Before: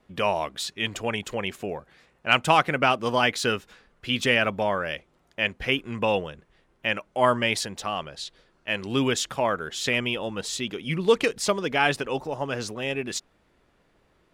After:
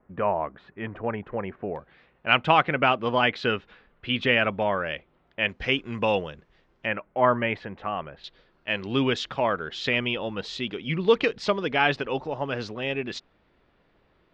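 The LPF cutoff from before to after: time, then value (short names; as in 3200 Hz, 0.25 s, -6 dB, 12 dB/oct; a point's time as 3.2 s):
LPF 24 dB/oct
1700 Hz
from 1.76 s 3500 Hz
from 5.49 s 5800 Hz
from 6.86 s 2300 Hz
from 8.24 s 4400 Hz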